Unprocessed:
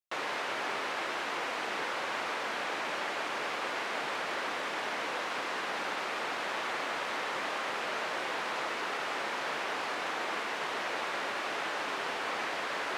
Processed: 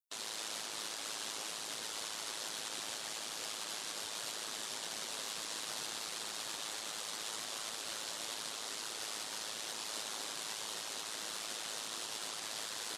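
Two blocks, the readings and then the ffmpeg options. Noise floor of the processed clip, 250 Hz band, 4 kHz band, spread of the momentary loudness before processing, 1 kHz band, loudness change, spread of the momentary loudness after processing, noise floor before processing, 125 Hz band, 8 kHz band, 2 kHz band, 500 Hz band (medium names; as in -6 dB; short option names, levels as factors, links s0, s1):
-44 dBFS, -11.0 dB, -0.5 dB, 0 LU, -14.0 dB, -6.0 dB, 1 LU, -36 dBFS, -6.5 dB, +8.5 dB, -13.0 dB, -13.5 dB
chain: -filter_complex "[0:a]bass=f=250:g=9,treble=f=4000:g=15,alimiter=level_in=1.5:limit=0.0631:level=0:latency=1:release=87,volume=0.668,aeval=exprs='val(0)*sin(2*PI*54*n/s)':c=same,aexciter=amount=3.2:drive=3.1:freq=3200,afftdn=nr=18:nf=-47,asplit=2[s0][s1];[s1]asplit=6[s2][s3][s4][s5][s6][s7];[s2]adelay=255,afreqshift=-61,volume=0.266[s8];[s3]adelay=510,afreqshift=-122,volume=0.143[s9];[s4]adelay=765,afreqshift=-183,volume=0.0776[s10];[s5]adelay=1020,afreqshift=-244,volume=0.0417[s11];[s6]adelay=1275,afreqshift=-305,volume=0.0226[s12];[s7]adelay=1530,afreqshift=-366,volume=0.0122[s13];[s8][s9][s10][s11][s12][s13]amix=inputs=6:normalize=0[s14];[s0][s14]amix=inputs=2:normalize=0,volume=0.473"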